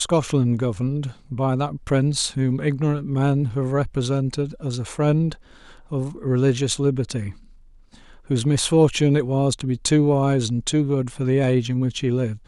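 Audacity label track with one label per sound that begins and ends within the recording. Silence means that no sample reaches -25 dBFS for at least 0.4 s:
5.920000	7.300000	sound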